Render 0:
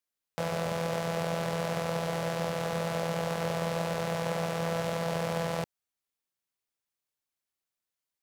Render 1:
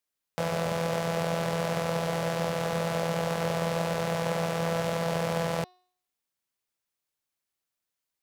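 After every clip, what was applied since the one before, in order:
hum removal 363.9 Hz, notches 16
level +2.5 dB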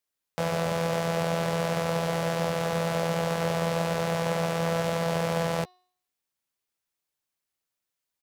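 double-tracking delay 12 ms −12 dB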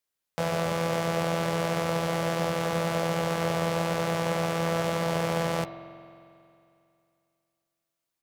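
convolution reverb RT60 2.6 s, pre-delay 45 ms, DRR 9.5 dB

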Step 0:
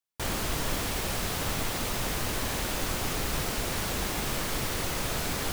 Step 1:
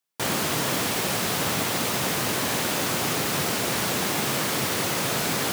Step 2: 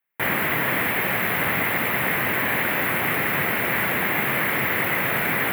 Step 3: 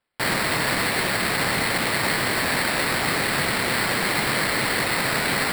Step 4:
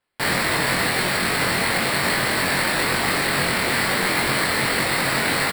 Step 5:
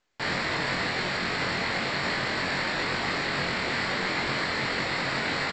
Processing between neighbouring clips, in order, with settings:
high-pass filter 120 Hz 24 dB per octave; level +6.5 dB
drawn EQ curve 410 Hz 0 dB, 1,300 Hz +3 dB, 2,000 Hz +12 dB, 5,900 Hz −25 dB, 14,000 Hz +5 dB
sample-rate reduction 6,300 Hz, jitter 0%
double-tracking delay 22 ms −3 dB
level −7 dB; mu-law 128 kbit/s 16,000 Hz

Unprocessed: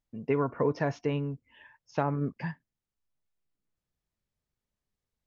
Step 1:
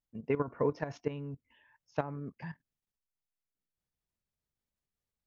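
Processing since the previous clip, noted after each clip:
output level in coarse steps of 13 dB
level −1 dB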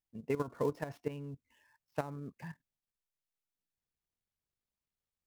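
gap after every zero crossing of 0.06 ms
level −3 dB

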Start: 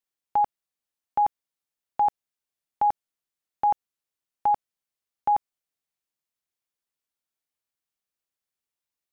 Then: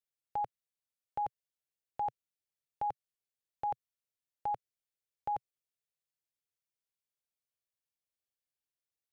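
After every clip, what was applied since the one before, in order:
octave-band graphic EQ 125/250/500/1,000 Hz +7/−9/+5/−9 dB
level −7 dB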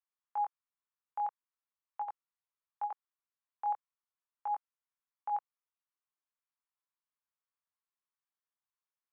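chorus effect 0.42 Hz, delay 19 ms, depth 5.4 ms
four-pole ladder band-pass 1,200 Hz, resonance 55%
level +13 dB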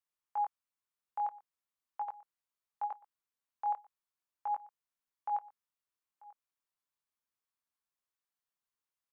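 single-tap delay 940 ms −21.5 dB

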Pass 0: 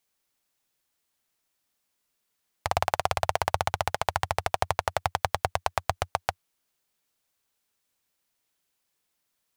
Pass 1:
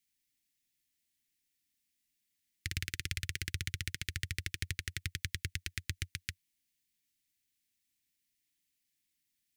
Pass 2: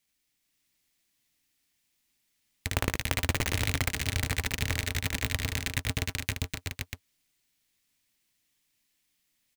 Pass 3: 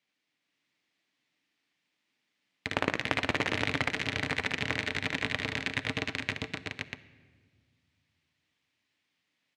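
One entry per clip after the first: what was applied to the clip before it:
elliptic band-stop filter 310–1,900 Hz, stop band 50 dB; level −3.5 dB
each half-wave held at its own peak; multi-tap delay 74/422/522/641 ms −7/−7/−3.5/−6.5 dB; level +1.5 dB
band-pass filter 200–3,200 Hz; convolution reverb RT60 1.7 s, pre-delay 7 ms, DRR 13 dB; level +3 dB

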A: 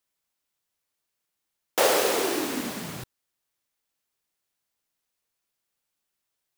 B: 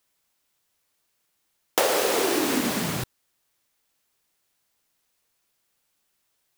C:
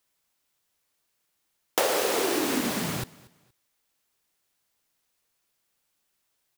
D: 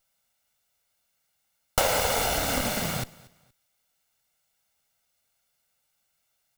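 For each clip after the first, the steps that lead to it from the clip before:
downward compressor 6 to 1, threshold −28 dBFS, peak gain reduction 11 dB; level +8.5 dB
repeating echo 235 ms, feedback 28%, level −22.5 dB; level −2.5 dB
lower of the sound and its delayed copy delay 1.4 ms; level +2.5 dB

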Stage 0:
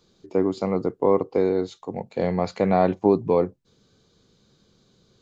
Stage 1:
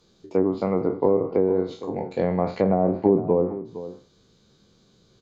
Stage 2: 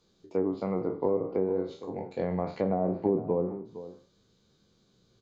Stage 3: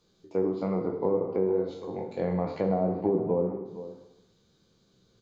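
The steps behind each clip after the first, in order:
peak hold with a decay on every bin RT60 0.36 s; treble cut that deepens with the level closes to 580 Hz, closed at −14.5 dBFS; slap from a distant wall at 79 metres, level −14 dB
flanger 0.47 Hz, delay 9.2 ms, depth 9.8 ms, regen +81%; level −3 dB
dense smooth reverb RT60 1 s, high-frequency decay 0.95×, DRR 6 dB

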